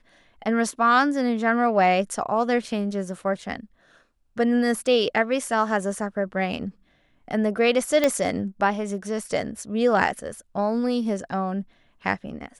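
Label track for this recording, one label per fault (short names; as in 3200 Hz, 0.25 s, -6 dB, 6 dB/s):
8.040000	8.040000	pop -7 dBFS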